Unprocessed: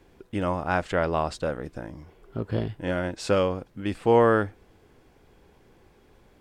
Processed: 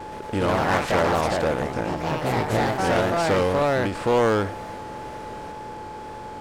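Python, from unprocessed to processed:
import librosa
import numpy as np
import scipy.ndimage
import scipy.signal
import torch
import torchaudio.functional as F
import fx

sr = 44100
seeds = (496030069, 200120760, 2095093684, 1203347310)

p1 = fx.bin_compress(x, sr, power=0.6)
p2 = fx.echo_pitch(p1, sr, ms=123, semitones=3, count=3, db_per_echo=-3.0)
p3 = 10.0 ** (-21.0 / 20.0) * (np.abs((p2 / 10.0 ** (-21.0 / 20.0) + 3.0) % 4.0 - 2.0) - 1.0)
p4 = p2 + F.gain(torch.from_numpy(p3), -4.5).numpy()
p5 = fx.vibrato(p4, sr, rate_hz=2.0, depth_cents=64.0)
p6 = p5 + 10.0 ** (-33.0 / 20.0) * np.sin(2.0 * np.pi * 860.0 * np.arange(len(p5)) / sr)
p7 = fx.end_taper(p6, sr, db_per_s=110.0)
y = F.gain(torch.from_numpy(p7), -2.5).numpy()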